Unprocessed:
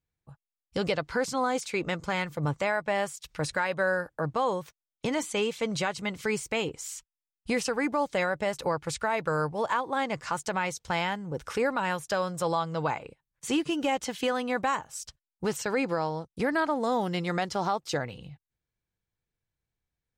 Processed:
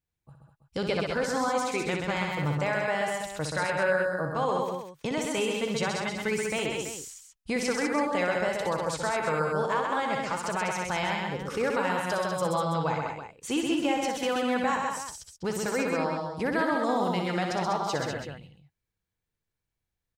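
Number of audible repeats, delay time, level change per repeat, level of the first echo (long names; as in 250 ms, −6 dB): 4, 61 ms, repeats not evenly spaced, −6.5 dB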